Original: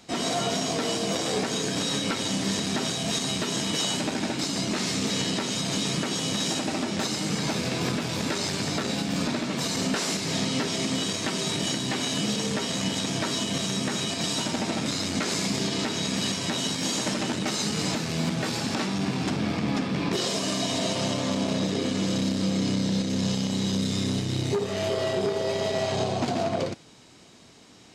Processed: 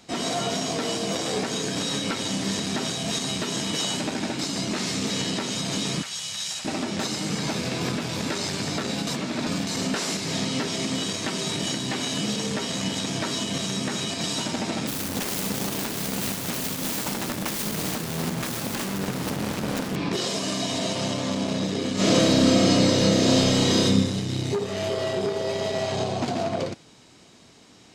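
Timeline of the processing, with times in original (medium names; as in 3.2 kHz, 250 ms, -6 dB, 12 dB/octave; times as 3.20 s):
6.02–6.65 s: amplifier tone stack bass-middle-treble 10-0-10
9.07–9.67 s: reverse
14.87–19.96 s: self-modulated delay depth 0.89 ms
21.94–23.84 s: reverb throw, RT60 0.92 s, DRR -10.5 dB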